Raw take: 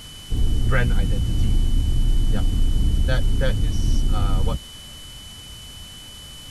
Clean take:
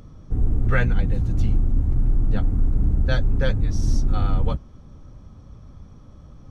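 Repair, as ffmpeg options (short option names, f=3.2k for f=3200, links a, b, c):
-af "adeclick=t=4,bandreject=f=3k:w=30,afwtdn=0.0071"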